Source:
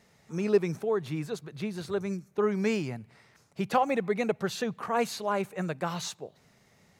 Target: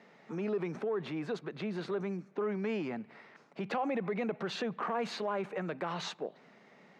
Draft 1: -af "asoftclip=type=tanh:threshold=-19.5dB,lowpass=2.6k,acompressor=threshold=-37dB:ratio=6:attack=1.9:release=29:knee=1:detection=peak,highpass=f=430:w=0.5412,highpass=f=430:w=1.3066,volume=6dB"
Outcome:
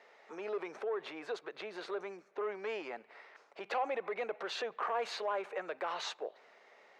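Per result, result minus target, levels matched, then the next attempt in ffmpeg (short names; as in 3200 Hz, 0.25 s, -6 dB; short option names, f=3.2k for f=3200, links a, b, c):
250 Hz band -11.0 dB; soft clip: distortion +11 dB
-af "asoftclip=type=tanh:threshold=-19.5dB,lowpass=2.6k,acompressor=threshold=-37dB:ratio=6:attack=1.9:release=29:knee=1:detection=peak,highpass=f=200:w=0.5412,highpass=f=200:w=1.3066,volume=6dB"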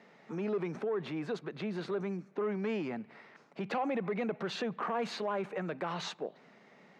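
soft clip: distortion +11 dB
-af "asoftclip=type=tanh:threshold=-12dB,lowpass=2.6k,acompressor=threshold=-37dB:ratio=6:attack=1.9:release=29:knee=1:detection=peak,highpass=f=200:w=0.5412,highpass=f=200:w=1.3066,volume=6dB"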